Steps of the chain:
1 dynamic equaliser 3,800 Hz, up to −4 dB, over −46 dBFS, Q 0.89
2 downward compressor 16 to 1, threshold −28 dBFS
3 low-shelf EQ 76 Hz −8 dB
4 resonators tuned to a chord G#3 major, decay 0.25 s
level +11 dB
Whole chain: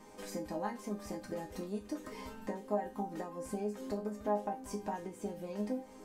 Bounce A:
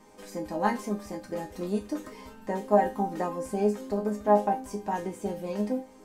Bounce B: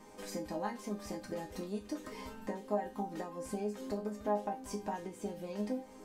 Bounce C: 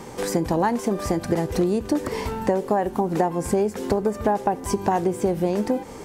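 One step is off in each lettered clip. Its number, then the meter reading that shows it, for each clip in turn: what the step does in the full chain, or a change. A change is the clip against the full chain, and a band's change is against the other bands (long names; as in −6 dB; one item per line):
2, average gain reduction 6.5 dB
1, 4 kHz band +2.5 dB
4, 125 Hz band +3.0 dB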